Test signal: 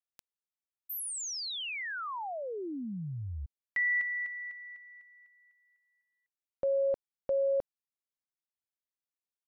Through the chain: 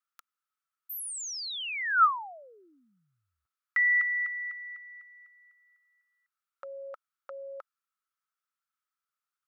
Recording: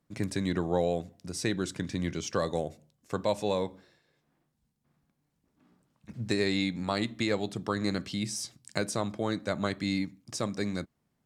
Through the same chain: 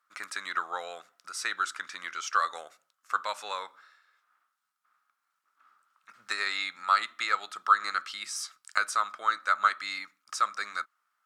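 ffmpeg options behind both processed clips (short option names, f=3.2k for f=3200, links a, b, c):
-af "highpass=f=1.3k:t=q:w=11"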